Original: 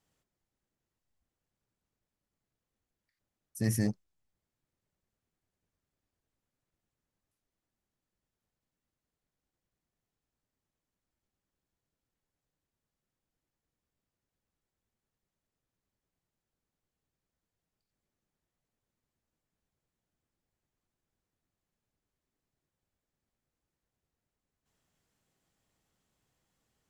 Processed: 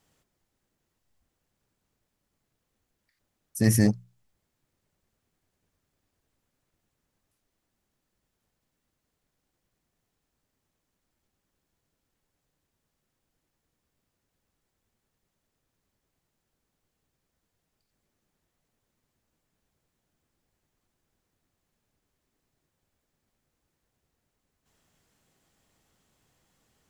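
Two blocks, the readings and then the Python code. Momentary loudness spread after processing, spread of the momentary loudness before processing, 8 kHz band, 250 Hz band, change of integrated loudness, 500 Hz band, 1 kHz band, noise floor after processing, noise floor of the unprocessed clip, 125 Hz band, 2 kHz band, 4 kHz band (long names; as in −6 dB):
17 LU, 18 LU, +9.0 dB, +9.0 dB, +8.5 dB, +9.0 dB, +9.0 dB, −81 dBFS, below −85 dBFS, +8.0 dB, +9.0 dB, +9.0 dB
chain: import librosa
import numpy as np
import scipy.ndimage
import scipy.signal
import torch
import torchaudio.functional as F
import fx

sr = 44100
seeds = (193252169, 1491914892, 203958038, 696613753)

y = fx.hum_notches(x, sr, base_hz=60, count=3)
y = F.gain(torch.from_numpy(y), 9.0).numpy()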